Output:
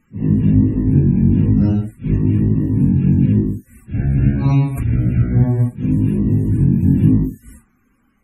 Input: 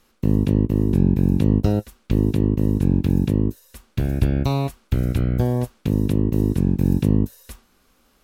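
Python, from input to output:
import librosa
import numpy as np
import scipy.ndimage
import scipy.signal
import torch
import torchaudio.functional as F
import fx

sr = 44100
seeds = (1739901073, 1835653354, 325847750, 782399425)

y = fx.phase_scramble(x, sr, seeds[0], window_ms=200)
y = fx.graphic_eq_10(y, sr, hz=(125, 250, 500, 2000, 4000, 8000), db=(9, 7, -6, 7, -6, 5))
y = fx.spec_topn(y, sr, count=64)
y = fx.pre_swell(y, sr, db_per_s=40.0, at=(4.44, 4.94), fade=0.02)
y = y * librosa.db_to_amplitude(-2.0)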